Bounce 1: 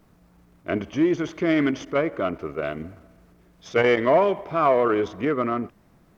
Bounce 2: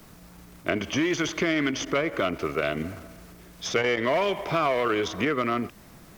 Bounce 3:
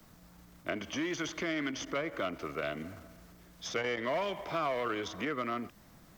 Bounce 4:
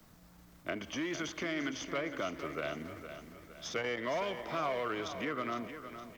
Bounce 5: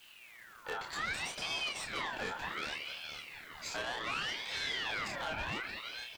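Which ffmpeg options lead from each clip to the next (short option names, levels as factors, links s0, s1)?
-filter_complex "[0:a]highshelf=f=2200:g=11,asplit=2[s0][s1];[s1]alimiter=limit=0.188:level=0:latency=1:release=178,volume=1.19[s2];[s0][s2]amix=inputs=2:normalize=0,acrossover=split=86|860|1800[s3][s4][s5][s6];[s3]acompressor=threshold=0.00398:ratio=4[s7];[s4]acompressor=threshold=0.0501:ratio=4[s8];[s5]acompressor=threshold=0.0178:ratio=4[s9];[s6]acompressor=threshold=0.0282:ratio=4[s10];[s7][s8][s9][s10]amix=inputs=4:normalize=0"
-filter_complex "[0:a]equalizer=f=400:t=o:w=0.33:g=-5,equalizer=f=2500:t=o:w=0.33:g=-3,equalizer=f=10000:t=o:w=0.33:g=-4,acrossover=split=200|1300|2100[s0][s1][s2][s3];[s0]alimiter=level_in=5.01:limit=0.0631:level=0:latency=1,volume=0.2[s4];[s4][s1][s2][s3]amix=inputs=4:normalize=0,volume=0.398"
-af "aecho=1:1:462|924|1386|1848|2310:0.299|0.137|0.0632|0.0291|0.0134,volume=0.794"
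-filter_complex "[0:a]asoftclip=type=tanh:threshold=0.0141,asplit=2[s0][s1];[s1]adelay=28,volume=0.631[s2];[s0][s2]amix=inputs=2:normalize=0,aeval=exprs='val(0)*sin(2*PI*2000*n/s+2000*0.45/0.66*sin(2*PI*0.66*n/s))':c=same,volume=1.68"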